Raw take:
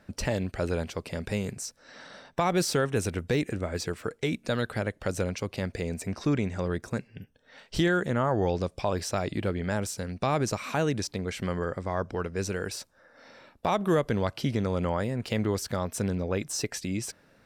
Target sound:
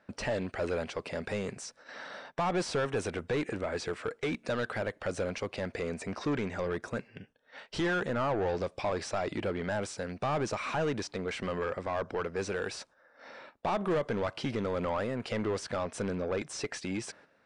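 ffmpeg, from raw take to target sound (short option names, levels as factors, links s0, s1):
-filter_complex "[0:a]agate=range=0.355:threshold=0.00224:ratio=16:detection=peak,asplit=2[s0][s1];[s1]highpass=f=720:p=1,volume=11.2,asoftclip=type=tanh:threshold=0.2[s2];[s0][s2]amix=inputs=2:normalize=0,lowpass=f=1700:p=1,volume=0.501,aresample=22050,aresample=44100,volume=0.422"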